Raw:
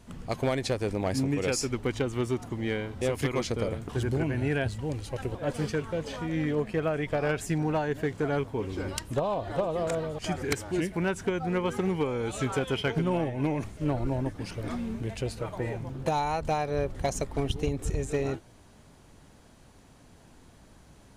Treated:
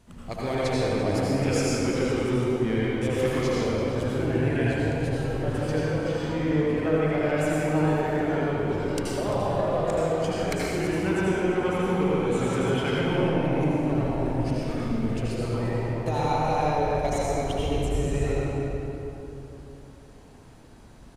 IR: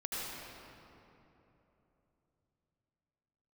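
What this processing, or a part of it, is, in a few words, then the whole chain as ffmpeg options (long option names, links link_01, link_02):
cave: -filter_complex "[0:a]aecho=1:1:344:0.211[link_01];[1:a]atrim=start_sample=2205[link_02];[link_01][link_02]afir=irnorm=-1:irlink=0"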